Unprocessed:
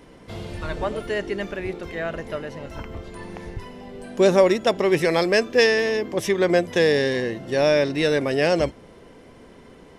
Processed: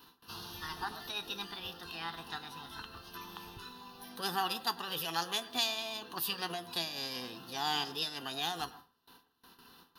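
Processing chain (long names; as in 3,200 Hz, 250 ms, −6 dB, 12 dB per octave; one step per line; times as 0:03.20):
RIAA equalisation recording
noise gate with hold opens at −38 dBFS
in parallel at +2 dB: downward compressor, threshold −27 dBFS, peak gain reduction 15.5 dB
on the sum: formants moved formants +5 semitones
phaser with its sweep stopped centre 2,200 Hz, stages 6
tuned comb filter 84 Hz, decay 0.18 s, mix 50%
convolution reverb RT60 0.30 s, pre-delay 93 ms, DRR 16 dB
level −8.5 dB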